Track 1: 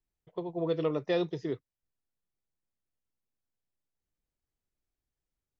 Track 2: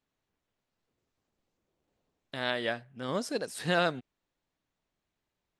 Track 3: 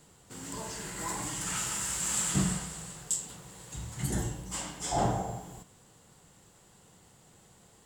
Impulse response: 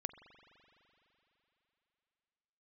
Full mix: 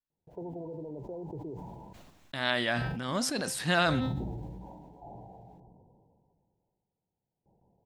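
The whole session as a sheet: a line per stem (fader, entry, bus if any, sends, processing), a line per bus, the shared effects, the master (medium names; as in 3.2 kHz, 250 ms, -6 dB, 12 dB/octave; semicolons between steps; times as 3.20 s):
+1.0 dB, 0.00 s, bus A, no send, peak limiter -29.5 dBFS, peak gain reduction 11.5 dB
+2.5 dB, 0.00 s, no bus, no send, peaking EQ 450 Hz -10.5 dB 0.55 oct; de-hum 260.3 Hz, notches 23
-6.5 dB, 0.10 s, muted 1.93–2.77 s, bus A, no send, compression 2.5:1, threshold -45 dBFS, peak gain reduction 14.5 dB
bus A: 0.0 dB, brick-wall FIR low-pass 1 kHz; compression, threshold -38 dBFS, peak gain reduction 6 dB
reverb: none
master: gate with hold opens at -57 dBFS; decay stretcher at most 26 dB/s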